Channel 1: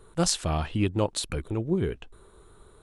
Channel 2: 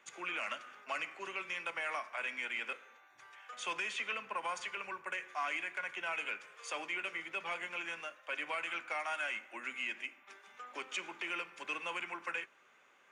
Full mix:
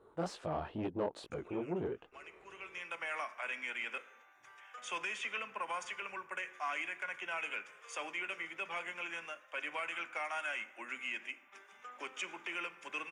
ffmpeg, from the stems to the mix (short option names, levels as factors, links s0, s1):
-filter_complex "[0:a]flanger=delay=17:depth=7.4:speed=2.3,asoftclip=type=tanh:threshold=0.0447,bandpass=f=590:t=q:w=0.84:csg=0,volume=1.06,asplit=2[s0][s1];[1:a]equalizer=f=4200:t=o:w=0.23:g=-11.5,adelay=1250,volume=0.891[s2];[s1]apad=whole_len=633388[s3];[s2][s3]sidechaincompress=threshold=0.00251:ratio=16:attack=24:release=904[s4];[s0][s4]amix=inputs=2:normalize=0"